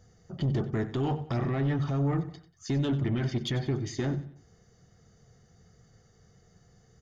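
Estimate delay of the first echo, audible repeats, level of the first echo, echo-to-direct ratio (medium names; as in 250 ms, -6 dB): 93 ms, 3, -15.0 dB, -14.5 dB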